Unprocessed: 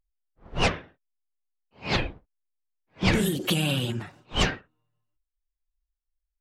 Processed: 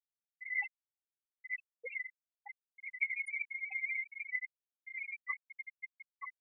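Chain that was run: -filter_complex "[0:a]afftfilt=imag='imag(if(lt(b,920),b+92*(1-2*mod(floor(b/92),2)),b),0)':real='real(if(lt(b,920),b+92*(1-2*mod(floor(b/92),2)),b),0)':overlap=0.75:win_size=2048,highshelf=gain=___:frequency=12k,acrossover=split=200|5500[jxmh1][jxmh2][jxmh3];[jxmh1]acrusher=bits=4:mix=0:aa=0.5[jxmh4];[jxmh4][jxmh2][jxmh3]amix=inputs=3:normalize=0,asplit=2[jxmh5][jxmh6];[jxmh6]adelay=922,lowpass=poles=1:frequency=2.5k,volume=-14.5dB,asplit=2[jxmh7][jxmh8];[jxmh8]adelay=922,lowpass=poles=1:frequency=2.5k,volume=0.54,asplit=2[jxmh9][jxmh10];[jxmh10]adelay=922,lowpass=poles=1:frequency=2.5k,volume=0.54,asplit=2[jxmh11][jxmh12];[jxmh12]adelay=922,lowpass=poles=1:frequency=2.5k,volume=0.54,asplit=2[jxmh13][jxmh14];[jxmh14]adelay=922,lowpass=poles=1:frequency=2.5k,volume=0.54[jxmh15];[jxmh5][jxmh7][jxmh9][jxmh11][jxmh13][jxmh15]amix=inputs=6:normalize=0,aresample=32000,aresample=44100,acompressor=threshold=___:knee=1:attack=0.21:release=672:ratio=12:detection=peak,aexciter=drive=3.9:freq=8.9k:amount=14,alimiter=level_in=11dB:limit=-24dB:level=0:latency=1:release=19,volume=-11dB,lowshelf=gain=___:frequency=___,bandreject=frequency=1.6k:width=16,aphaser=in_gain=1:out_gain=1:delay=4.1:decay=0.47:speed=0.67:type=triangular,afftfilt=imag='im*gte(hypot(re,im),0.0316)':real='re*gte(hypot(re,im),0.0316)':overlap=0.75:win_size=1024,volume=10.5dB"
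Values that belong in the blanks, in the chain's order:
-11, -38dB, -9.5, 310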